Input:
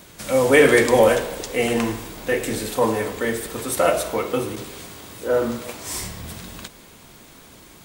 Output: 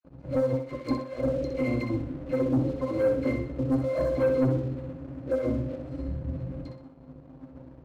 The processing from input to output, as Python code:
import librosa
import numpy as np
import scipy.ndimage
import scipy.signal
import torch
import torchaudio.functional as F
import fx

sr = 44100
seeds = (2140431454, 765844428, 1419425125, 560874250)

y = fx.wiener(x, sr, points=41)
y = fx.low_shelf(y, sr, hz=80.0, db=-9.5)
y = fx.over_compress(y, sr, threshold_db=-25.0, ratio=-0.5)
y = fx.octave_resonator(y, sr, note='C', decay_s=0.16)
y = fx.dispersion(y, sr, late='lows', ms=48.0, hz=1200.0)
y = fx.leveller(y, sr, passes=2)
y = fx.echo_thinned(y, sr, ms=63, feedback_pct=40, hz=210.0, wet_db=-6)
y = F.gain(torch.from_numpy(y), 3.5).numpy()